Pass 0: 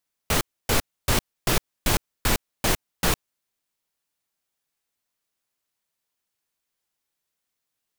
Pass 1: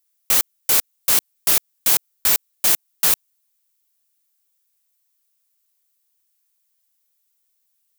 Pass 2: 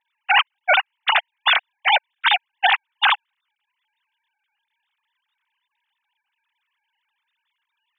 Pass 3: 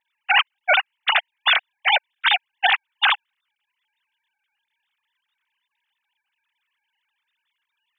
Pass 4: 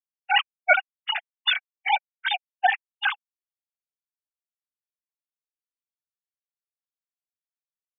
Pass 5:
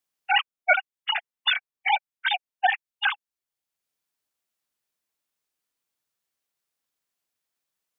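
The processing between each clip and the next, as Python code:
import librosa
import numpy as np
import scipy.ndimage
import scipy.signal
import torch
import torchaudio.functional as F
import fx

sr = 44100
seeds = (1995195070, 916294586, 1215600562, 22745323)

y1 = fx.riaa(x, sr, side='recording')
y1 = y1 * librosa.db_to_amplitude(-3.0)
y2 = fx.sine_speech(y1, sr)
y3 = fx.peak_eq(y2, sr, hz=940.0, db=-4.5, octaves=0.64)
y4 = fx.spectral_expand(y3, sr, expansion=2.5)
y5 = fx.band_squash(y4, sr, depth_pct=40)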